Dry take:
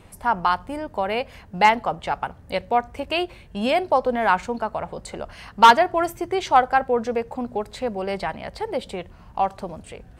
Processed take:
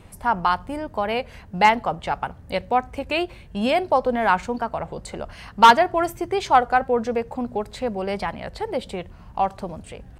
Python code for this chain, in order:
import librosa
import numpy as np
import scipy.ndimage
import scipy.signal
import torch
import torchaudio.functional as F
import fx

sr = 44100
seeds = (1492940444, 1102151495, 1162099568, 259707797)

y = fx.bass_treble(x, sr, bass_db=3, treble_db=0)
y = fx.record_warp(y, sr, rpm=33.33, depth_cents=100.0)